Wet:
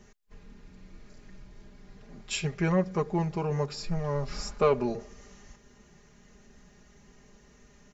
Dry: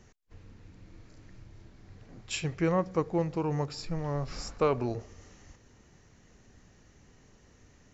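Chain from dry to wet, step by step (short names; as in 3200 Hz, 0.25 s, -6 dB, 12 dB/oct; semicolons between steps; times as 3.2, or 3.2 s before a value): comb 4.9 ms, depth 85%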